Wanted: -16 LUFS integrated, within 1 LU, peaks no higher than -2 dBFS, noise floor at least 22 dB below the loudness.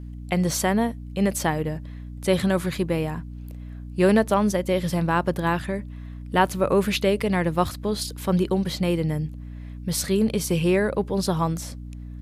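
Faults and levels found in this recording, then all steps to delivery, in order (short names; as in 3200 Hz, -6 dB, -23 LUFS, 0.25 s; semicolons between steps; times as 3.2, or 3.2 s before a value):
hum 60 Hz; harmonics up to 300 Hz; hum level -33 dBFS; loudness -24.0 LUFS; peak -6.0 dBFS; loudness target -16.0 LUFS
-> de-hum 60 Hz, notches 5; gain +8 dB; limiter -2 dBFS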